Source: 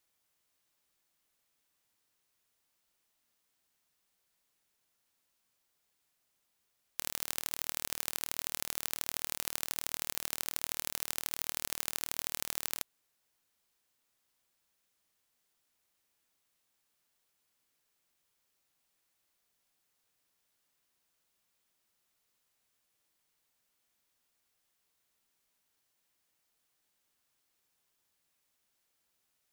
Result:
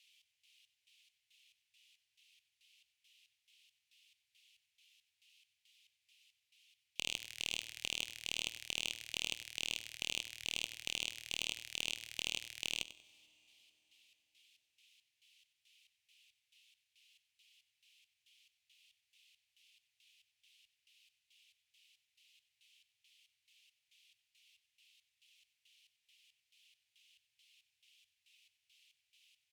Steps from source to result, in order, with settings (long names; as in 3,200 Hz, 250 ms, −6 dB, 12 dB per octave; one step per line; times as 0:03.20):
auto-filter band-pass square 2.3 Hz 770–2,900 Hz
in parallel at 0 dB: downward compressor, threshold −60 dBFS, peak gain reduction 18.5 dB
on the sum: soft clipping −32.5 dBFS, distortion −9 dB
elliptic band-stop filter 110–2,500 Hz, stop band 40 dB
asymmetric clip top −42.5 dBFS, bottom −34 dBFS
repeating echo 94 ms, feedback 29%, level −15 dB
on a send at −23 dB: convolution reverb RT60 4.5 s, pre-delay 42 ms
on the sum: level +15.5 dB